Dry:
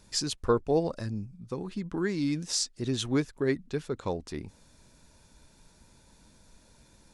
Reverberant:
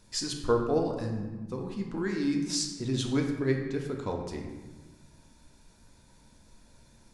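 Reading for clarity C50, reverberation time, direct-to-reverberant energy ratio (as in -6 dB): 5.0 dB, 1.3 s, 1.0 dB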